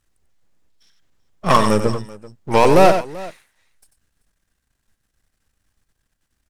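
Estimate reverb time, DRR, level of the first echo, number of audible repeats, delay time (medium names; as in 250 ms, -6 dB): no reverb, no reverb, -8.5 dB, 2, 93 ms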